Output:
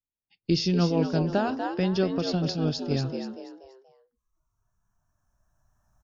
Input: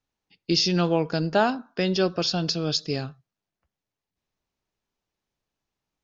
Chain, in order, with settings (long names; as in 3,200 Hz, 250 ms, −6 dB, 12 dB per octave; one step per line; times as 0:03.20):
camcorder AGC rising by 6.1 dB per second
low-shelf EQ 300 Hz +11 dB
noise reduction from a noise print of the clip's start 19 dB
high-shelf EQ 5,100 Hz −5 dB
echo with shifted repeats 240 ms, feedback 36%, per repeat +86 Hz, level −7 dB
0:00.68–0:02.91: amplitude tremolo 6.1 Hz, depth 38%
level −5.5 dB